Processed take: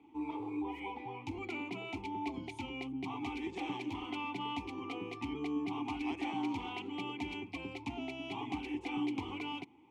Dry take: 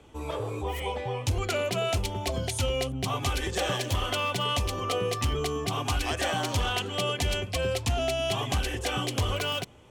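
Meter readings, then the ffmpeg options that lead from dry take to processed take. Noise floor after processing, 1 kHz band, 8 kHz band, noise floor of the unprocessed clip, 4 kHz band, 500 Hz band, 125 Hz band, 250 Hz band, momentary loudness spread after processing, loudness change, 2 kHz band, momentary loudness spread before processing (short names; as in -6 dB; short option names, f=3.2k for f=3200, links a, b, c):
-53 dBFS, -9.0 dB, under -25 dB, -38 dBFS, -16.5 dB, -16.0 dB, -20.0 dB, 0.0 dB, 5 LU, -10.5 dB, -10.5 dB, 4 LU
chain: -filter_complex "[0:a]asplit=3[a][b][c];[a]bandpass=f=300:t=q:w=8,volume=0dB[d];[b]bandpass=f=870:t=q:w=8,volume=-6dB[e];[c]bandpass=f=2.24k:t=q:w=8,volume=-9dB[f];[d][e][f]amix=inputs=3:normalize=0,volume=4.5dB"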